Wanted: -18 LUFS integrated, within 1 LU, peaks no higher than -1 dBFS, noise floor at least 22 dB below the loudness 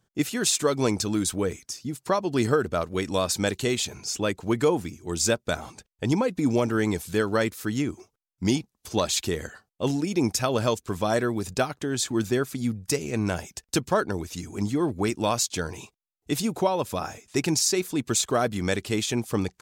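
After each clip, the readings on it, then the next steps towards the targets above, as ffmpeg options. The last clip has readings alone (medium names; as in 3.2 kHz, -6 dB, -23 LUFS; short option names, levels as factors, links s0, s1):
loudness -26.5 LUFS; peak level -10.0 dBFS; loudness target -18.0 LUFS
-> -af "volume=2.66"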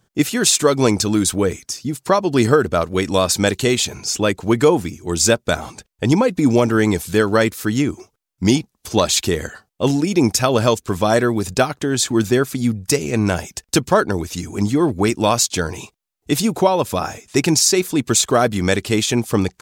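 loudness -18.0 LUFS; peak level -1.5 dBFS; noise floor -71 dBFS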